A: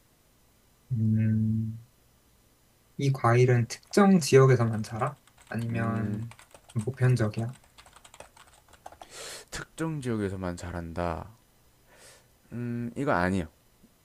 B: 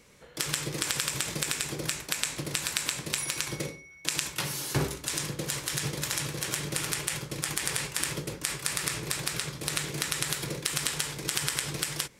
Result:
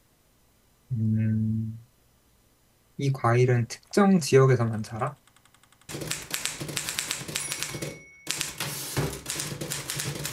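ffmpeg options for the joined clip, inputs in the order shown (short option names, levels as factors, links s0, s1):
-filter_complex "[0:a]apad=whole_dur=10.32,atrim=end=10.32,asplit=7[s0][s1][s2][s3][s4][s5][s6];[s0]atrim=end=5.352[s7];[s1]atrim=start=5.258:end=5.352[s8];[s2]atrim=start=5.258:end=5.352[s9];[s3]atrim=start=5.258:end=5.352[s10];[s4]atrim=start=5.258:end=5.352[s11];[s5]atrim=start=5.258:end=5.352[s12];[s6]atrim=start=5.258:end=5.352[s13];[1:a]atrim=start=1.668:end=6.1[s14];[s7][s8]acrossfade=d=0.004:c1=hsin:c2=hsin[s15];[s15][s9]acrossfade=d=0.004:c1=hsin:c2=hsin[s16];[s16][s10]acrossfade=d=0.004:c1=hsin:c2=hsin[s17];[s17][s11]acrossfade=d=0.004:c1=hsin:c2=hsin[s18];[s18][s12]acrossfade=d=0.004:c1=hsin:c2=hsin[s19];[s19][s13]acrossfade=d=0.004:c1=hsin:c2=hsin[s20];[s20][s14]acrossfade=d=0.004:c1=hsin:c2=hsin"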